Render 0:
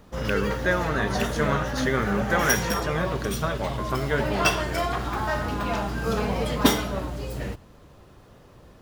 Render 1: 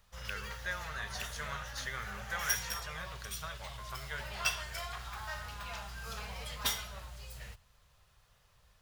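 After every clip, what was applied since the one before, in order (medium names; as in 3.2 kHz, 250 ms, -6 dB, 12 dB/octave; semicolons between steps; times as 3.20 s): amplifier tone stack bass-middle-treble 10-0-10; trim -6 dB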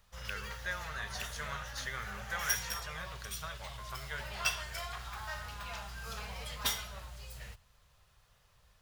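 no audible change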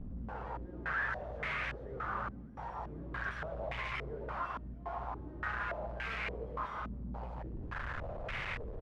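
one-bit comparator; delay 143 ms -9 dB; step-sequenced low-pass 3.5 Hz 240–2200 Hz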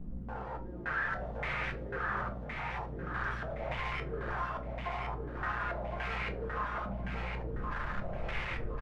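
on a send: feedback delay 1066 ms, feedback 31%, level -5 dB; on the sum: simulated room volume 160 m³, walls furnished, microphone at 0.86 m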